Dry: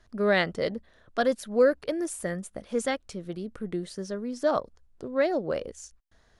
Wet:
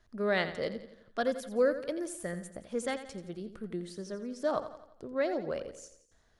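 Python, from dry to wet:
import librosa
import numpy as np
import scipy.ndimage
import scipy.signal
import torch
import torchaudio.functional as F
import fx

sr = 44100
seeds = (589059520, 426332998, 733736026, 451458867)

y = fx.echo_feedback(x, sr, ms=86, feedback_pct=49, wet_db=-12)
y = F.gain(torch.from_numpy(y), -6.0).numpy()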